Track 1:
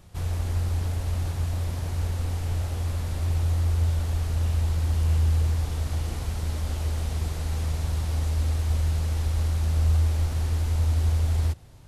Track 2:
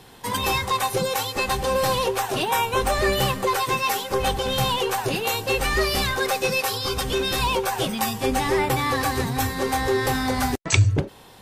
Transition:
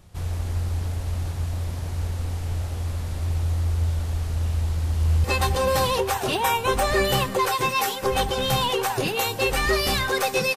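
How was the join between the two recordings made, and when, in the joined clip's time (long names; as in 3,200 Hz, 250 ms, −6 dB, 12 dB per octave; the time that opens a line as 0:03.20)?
track 1
0:04.69–0:05.24: delay throw 310 ms, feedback 50%, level −7 dB
0:05.24: continue with track 2 from 0:01.32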